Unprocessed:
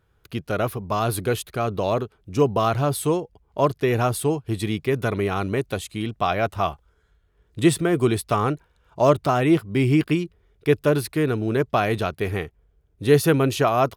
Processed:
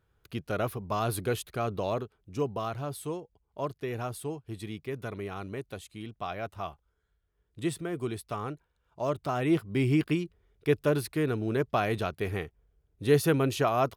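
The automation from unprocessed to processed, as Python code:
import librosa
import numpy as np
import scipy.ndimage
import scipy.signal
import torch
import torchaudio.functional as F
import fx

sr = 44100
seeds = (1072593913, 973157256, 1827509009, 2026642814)

y = fx.gain(x, sr, db=fx.line((1.67, -6.5), (2.77, -13.5), (9.08, -13.5), (9.59, -6.5)))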